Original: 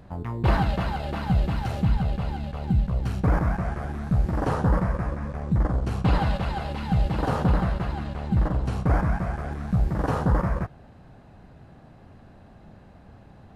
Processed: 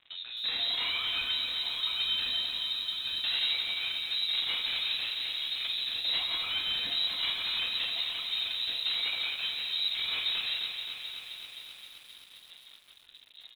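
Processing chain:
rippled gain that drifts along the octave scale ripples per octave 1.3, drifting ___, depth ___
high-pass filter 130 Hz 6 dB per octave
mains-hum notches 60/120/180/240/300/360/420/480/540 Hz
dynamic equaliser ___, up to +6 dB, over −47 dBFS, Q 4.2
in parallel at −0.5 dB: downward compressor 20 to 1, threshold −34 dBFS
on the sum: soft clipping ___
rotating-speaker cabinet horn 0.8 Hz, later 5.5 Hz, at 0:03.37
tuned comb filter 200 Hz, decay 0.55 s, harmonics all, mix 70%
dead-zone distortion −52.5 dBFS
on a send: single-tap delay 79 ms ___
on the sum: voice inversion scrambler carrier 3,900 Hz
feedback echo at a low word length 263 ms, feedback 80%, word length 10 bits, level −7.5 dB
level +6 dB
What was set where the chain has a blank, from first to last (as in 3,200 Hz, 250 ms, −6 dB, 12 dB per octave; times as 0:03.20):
−1.1 Hz, 21 dB, 1,500 Hz, −23.5 dBFS, −22 dB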